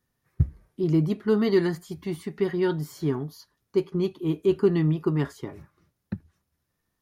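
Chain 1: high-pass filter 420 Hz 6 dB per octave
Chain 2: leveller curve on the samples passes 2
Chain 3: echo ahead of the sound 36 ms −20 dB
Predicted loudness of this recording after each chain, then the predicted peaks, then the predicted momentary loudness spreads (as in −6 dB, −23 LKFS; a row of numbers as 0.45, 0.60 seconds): −31.0, −21.0, −26.0 LKFS; −13.5, −9.5, −9.5 dBFS; 18, 14, 16 LU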